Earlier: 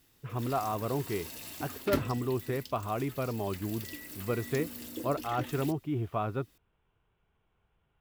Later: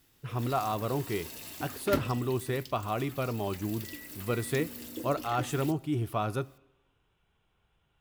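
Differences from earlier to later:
speech: remove air absorption 420 m; reverb: on, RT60 1.1 s

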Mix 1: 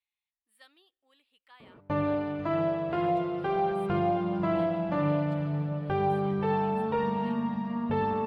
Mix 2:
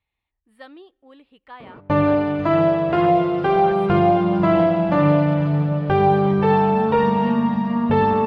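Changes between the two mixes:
speech: remove pre-emphasis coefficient 0.97; background +11.0 dB

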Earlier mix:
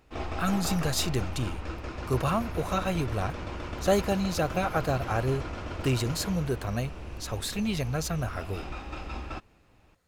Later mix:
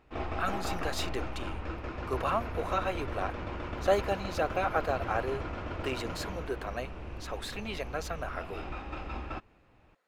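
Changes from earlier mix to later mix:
speech: add HPF 420 Hz 12 dB/oct; master: add tone controls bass -2 dB, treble -12 dB

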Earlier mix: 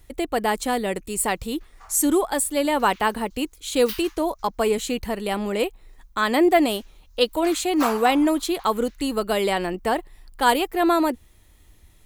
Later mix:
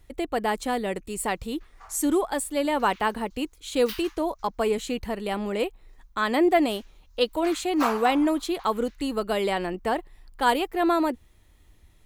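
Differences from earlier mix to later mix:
speech -3.0 dB; master: add high shelf 6000 Hz -7 dB

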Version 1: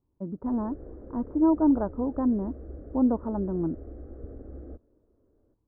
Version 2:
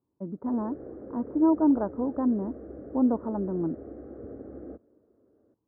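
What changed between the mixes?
background +4.5 dB; master: add HPF 150 Hz 12 dB/oct

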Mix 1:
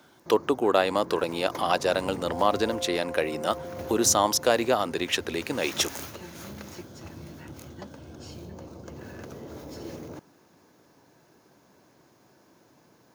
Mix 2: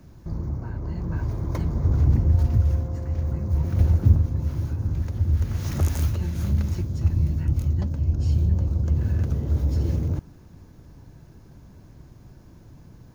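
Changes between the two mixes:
speech: muted; second sound -11.0 dB; master: remove HPF 400 Hz 12 dB/oct

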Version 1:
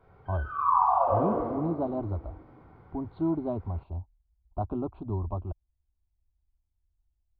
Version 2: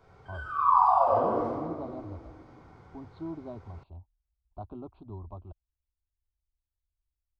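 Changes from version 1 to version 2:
speech -11.0 dB; master: remove air absorption 370 m

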